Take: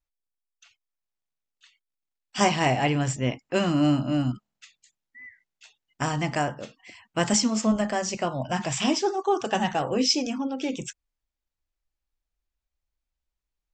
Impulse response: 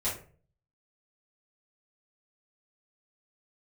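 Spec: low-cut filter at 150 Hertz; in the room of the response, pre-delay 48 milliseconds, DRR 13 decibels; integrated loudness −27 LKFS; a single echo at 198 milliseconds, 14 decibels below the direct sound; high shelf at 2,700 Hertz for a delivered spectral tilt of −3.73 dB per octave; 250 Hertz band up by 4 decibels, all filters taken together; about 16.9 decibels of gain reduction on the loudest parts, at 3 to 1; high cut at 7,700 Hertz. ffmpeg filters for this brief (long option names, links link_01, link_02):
-filter_complex "[0:a]highpass=150,lowpass=7700,equalizer=frequency=250:width_type=o:gain=5.5,highshelf=frequency=2700:gain=8,acompressor=threshold=-36dB:ratio=3,aecho=1:1:198:0.2,asplit=2[link_01][link_02];[1:a]atrim=start_sample=2205,adelay=48[link_03];[link_02][link_03]afir=irnorm=-1:irlink=0,volume=-19dB[link_04];[link_01][link_04]amix=inputs=2:normalize=0,volume=8.5dB"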